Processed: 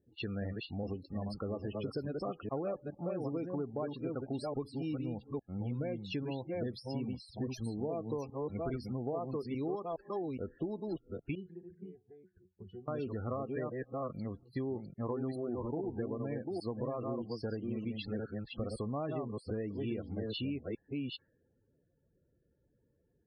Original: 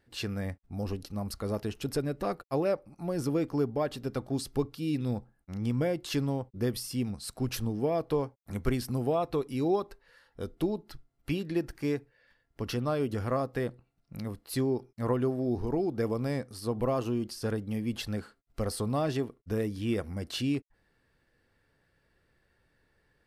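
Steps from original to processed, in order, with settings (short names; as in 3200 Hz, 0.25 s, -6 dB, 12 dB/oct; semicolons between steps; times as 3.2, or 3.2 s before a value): reverse delay 0.415 s, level -4 dB; HPF 94 Hz 6 dB/oct; loudest bins only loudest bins 32; compressor 4:1, threshold -35 dBFS, peak gain reduction 11.5 dB; low-pass opened by the level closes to 510 Hz, open at -33 dBFS; 11.35–12.88 octave resonator F#, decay 0.15 s; mismatched tape noise reduction decoder only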